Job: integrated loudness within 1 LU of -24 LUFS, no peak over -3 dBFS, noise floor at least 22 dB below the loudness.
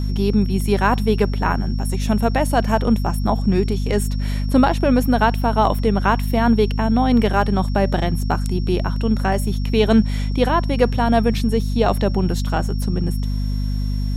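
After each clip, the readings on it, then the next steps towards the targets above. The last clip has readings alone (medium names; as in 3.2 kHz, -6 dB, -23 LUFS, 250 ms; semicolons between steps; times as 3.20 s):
hum 50 Hz; highest harmonic 250 Hz; hum level -19 dBFS; steady tone 5.5 kHz; tone level -41 dBFS; loudness -19.5 LUFS; peak level -2.5 dBFS; loudness target -24.0 LUFS
-> hum notches 50/100/150/200/250 Hz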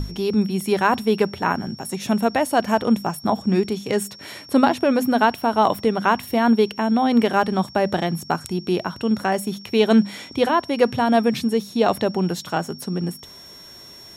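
hum not found; steady tone 5.5 kHz; tone level -41 dBFS
-> band-stop 5.5 kHz, Q 30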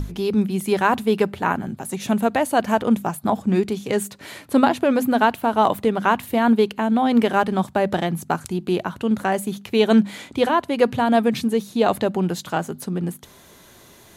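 steady tone not found; loudness -21.0 LUFS; peak level -3.5 dBFS; loudness target -24.0 LUFS
-> trim -3 dB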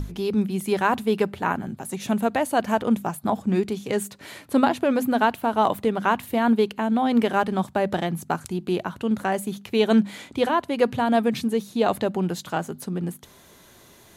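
loudness -24.0 LUFS; peak level -6.5 dBFS; noise floor -52 dBFS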